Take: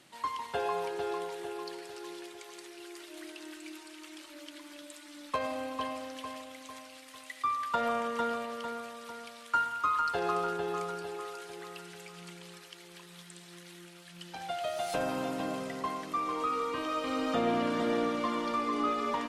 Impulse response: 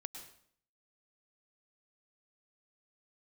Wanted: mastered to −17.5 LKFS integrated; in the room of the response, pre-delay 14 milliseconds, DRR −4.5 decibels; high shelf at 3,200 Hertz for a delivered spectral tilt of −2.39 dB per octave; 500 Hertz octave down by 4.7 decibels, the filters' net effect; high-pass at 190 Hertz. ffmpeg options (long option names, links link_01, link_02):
-filter_complex "[0:a]highpass=190,equalizer=frequency=500:width_type=o:gain=-5.5,highshelf=frequency=3200:gain=-8.5,asplit=2[link_01][link_02];[1:a]atrim=start_sample=2205,adelay=14[link_03];[link_02][link_03]afir=irnorm=-1:irlink=0,volume=7.5dB[link_04];[link_01][link_04]amix=inputs=2:normalize=0,volume=15dB"